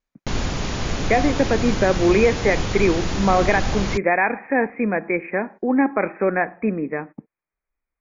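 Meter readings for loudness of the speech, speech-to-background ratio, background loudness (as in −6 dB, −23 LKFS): −21.0 LKFS, 5.0 dB, −26.0 LKFS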